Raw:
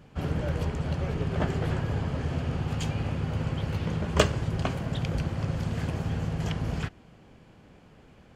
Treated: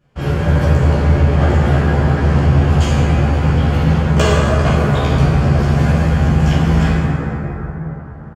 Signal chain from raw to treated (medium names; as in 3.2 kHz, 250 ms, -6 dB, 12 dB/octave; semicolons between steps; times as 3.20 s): gate -48 dBFS, range -17 dB; gain riding within 3 dB 0.5 s; doubling 14 ms -2 dB; plate-style reverb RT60 4.6 s, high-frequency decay 0.3×, DRR -8.5 dB; loudness maximiser +5 dB; trim -1 dB